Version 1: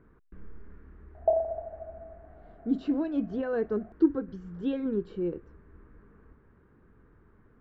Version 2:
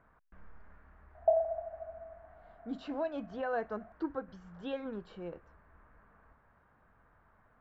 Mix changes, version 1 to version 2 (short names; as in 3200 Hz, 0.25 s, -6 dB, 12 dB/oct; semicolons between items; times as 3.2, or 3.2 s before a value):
background -8.0 dB; master: add resonant low shelf 510 Hz -9 dB, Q 3